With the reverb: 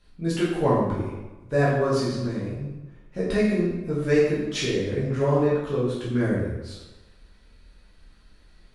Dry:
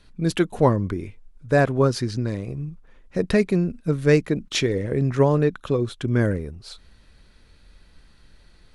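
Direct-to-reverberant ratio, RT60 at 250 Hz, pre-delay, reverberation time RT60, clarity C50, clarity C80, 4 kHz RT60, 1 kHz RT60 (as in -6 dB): -8.0 dB, 1.1 s, 7 ms, 1.1 s, 0.5 dB, 3.0 dB, 0.80 s, 1.1 s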